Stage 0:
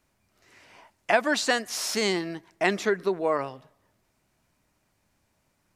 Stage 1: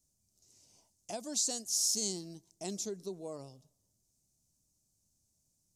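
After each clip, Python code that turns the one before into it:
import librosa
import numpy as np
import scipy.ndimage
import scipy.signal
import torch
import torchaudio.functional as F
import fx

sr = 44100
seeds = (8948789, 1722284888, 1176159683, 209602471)

y = fx.curve_eq(x, sr, hz=(150.0, 340.0, 730.0, 1800.0, 6400.0, 14000.0), db=(0, -7, -12, -29, 12, 4))
y = y * librosa.db_to_amplitude(-7.5)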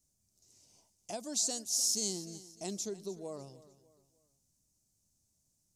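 y = fx.echo_feedback(x, sr, ms=301, feedback_pct=37, wet_db=-17.5)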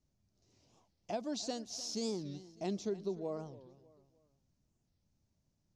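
y = fx.air_absorb(x, sr, metres=250.0)
y = fx.record_warp(y, sr, rpm=45.0, depth_cents=250.0)
y = y * librosa.db_to_amplitude(4.0)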